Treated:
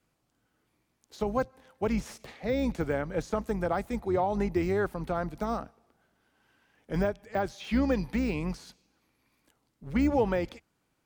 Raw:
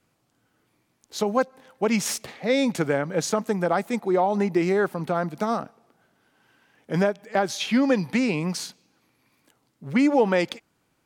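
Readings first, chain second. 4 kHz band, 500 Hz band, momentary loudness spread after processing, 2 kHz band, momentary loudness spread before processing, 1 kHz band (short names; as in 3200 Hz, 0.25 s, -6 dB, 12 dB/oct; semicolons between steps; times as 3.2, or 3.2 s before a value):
-13.0 dB, -6.5 dB, 9 LU, -8.5 dB, 9 LU, -6.5 dB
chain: octaver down 2 oct, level -6 dB; de-esser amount 100%; gain -6 dB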